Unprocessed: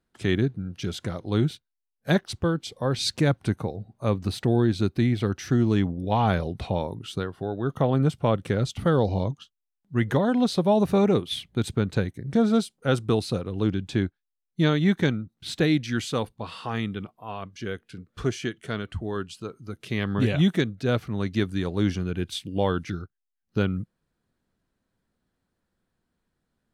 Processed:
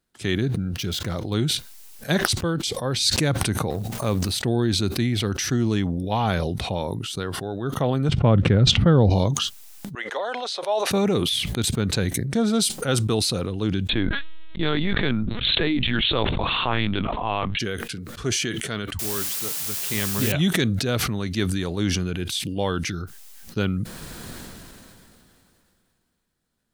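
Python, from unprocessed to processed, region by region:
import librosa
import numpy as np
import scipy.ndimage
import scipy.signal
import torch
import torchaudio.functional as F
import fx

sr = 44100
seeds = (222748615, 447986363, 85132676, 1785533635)

y = fx.chain(x, sr, fx.median_filter(points=5),
    fx.low_shelf(hz=140.0, db=4.5), at=(0.73, 1.34))
y = fx.chain(y, sr, fx.law_mismatch(coded='A'),
    fx.pre_swell(db_per_s=52.0), at=(3.7, 4.32))
y = fx.chain(y, sr, fx.lowpass(hz=2500.0, slope=12),
    fx.low_shelf(hz=270.0, db=11.5), at=(8.09, 9.1))
y = fx.chain(y, sr, fx.highpass(hz=520.0, slope=24),
    fx.air_absorb(metres=82.0), at=(9.95, 10.91))
y = fx.chain(y, sr, fx.peak_eq(hz=200.0, db=-3.0, octaves=1.1),
    fx.lpc_vocoder(seeds[0], excitation='pitch_kept', order=10),
    fx.env_flatten(amount_pct=70), at=(13.89, 17.59))
y = fx.chain(y, sr, fx.hum_notches(base_hz=60, count=6),
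    fx.quant_dither(seeds[1], bits=6, dither='triangular'), at=(18.99, 20.32))
y = fx.high_shelf(y, sr, hz=3000.0, db=10.0)
y = fx.sustainer(y, sr, db_per_s=21.0)
y = y * librosa.db_to_amplitude(-1.5)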